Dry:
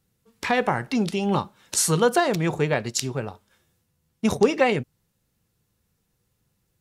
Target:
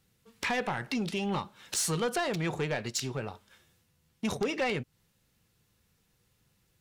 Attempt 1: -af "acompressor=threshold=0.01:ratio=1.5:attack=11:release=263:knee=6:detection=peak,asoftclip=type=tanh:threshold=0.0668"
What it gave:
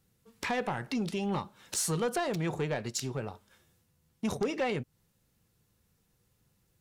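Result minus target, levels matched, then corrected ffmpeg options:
2 kHz band -2.5 dB
-af "acompressor=threshold=0.01:ratio=1.5:attack=11:release=263:knee=6:detection=peak,equalizer=f=2800:w=0.56:g=5.5,asoftclip=type=tanh:threshold=0.0668"

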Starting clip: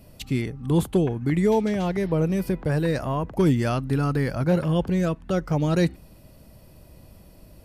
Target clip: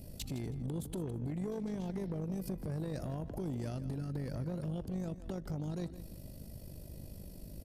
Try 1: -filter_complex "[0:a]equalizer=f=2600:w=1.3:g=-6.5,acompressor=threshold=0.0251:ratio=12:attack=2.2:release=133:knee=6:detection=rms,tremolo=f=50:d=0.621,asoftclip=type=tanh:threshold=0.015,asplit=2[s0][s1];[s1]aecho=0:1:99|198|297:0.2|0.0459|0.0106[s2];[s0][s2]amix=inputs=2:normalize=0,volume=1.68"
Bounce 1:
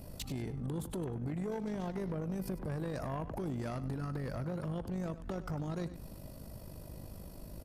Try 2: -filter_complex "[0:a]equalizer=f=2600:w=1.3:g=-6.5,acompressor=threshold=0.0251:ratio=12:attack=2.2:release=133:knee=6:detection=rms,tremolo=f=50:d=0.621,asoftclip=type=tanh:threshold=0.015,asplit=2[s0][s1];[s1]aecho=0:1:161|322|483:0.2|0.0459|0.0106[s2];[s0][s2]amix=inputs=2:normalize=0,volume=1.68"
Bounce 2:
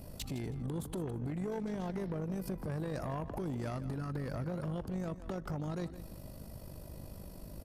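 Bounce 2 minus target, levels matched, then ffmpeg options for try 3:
1 kHz band +6.0 dB
-filter_complex "[0:a]equalizer=f=2600:w=1.3:g=-6.5,acompressor=threshold=0.0251:ratio=12:attack=2.2:release=133:knee=6:detection=rms,equalizer=f=1100:w=1.2:g=-14,tremolo=f=50:d=0.621,asoftclip=type=tanh:threshold=0.015,asplit=2[s0][s1];[s1]aecho=0:1:161|322|483:0.2|0.0459|0.0106[s2];[s0][s2]amix=inputs=2:normalize=0,volume=1.68"

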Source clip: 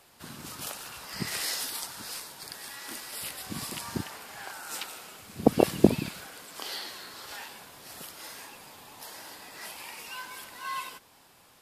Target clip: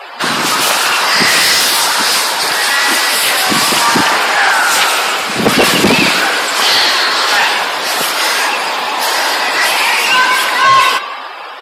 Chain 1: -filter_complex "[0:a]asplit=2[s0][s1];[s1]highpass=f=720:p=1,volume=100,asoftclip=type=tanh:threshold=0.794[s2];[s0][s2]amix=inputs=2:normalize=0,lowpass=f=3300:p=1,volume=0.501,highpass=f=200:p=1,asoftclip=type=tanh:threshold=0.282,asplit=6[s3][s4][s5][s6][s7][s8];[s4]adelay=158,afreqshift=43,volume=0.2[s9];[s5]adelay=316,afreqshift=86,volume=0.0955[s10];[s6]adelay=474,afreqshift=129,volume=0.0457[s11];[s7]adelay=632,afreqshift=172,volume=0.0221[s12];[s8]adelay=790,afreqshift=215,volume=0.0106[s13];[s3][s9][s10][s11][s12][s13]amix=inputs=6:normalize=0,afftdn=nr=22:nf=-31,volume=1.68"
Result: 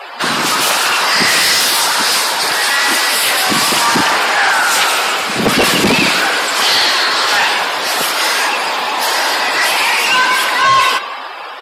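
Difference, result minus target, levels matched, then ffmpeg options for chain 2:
saturation: distortion +11 dB
-filter_complex "[0:a]asplit=2[s0][s1];[s1]highpass=f=720:p=1,volume=100,asoftclip=type=tanh:threshold=0.794[s2];[s0][s2]amix=inputs=2:normalize=0,lowpass=f=3300:p=1,volume=0.501,highpass=f=200:p=1,asoftclip=type=tanh:threshold=0.631,asplit=6[s3][s4][s5][s6][s7][s8];[s4]adelay=158,afreqshift=43,volume=0.2[s9];[s5]adelay=316,afreqshift=86,volume=0.0955[s10];[s6]adelay=474,afreqshift=129,volume=0.0457[s11];[s7]adelay=632,afreqshift=172,volume=0.0221[s12];[s8]adelay=790,afreqshift=215,volume=0.0106[s13];[s3][s9][s10][s11][s12][s13]amix=inputs=6:normalize=0,afftdn=nr=22:nf=-31,volume=1.68"

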